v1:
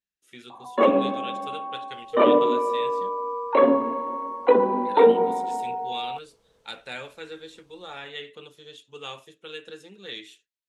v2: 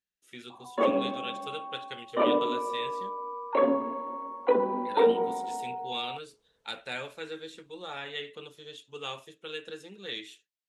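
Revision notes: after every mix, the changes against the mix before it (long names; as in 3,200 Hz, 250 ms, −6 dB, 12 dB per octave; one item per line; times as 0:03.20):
first sound −6.5 dB
second sound −10.5 dB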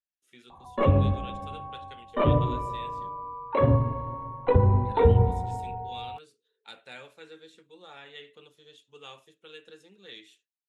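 speech −8.5 dB
first sound: remove Butterworth high-pass 220 Hz 48 dB per octave
second sound: add flat-topped band-pass 410 Hz, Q 5.3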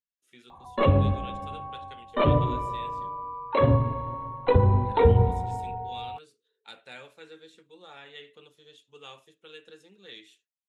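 first sound: remove high-frequency loss of the air 350 metres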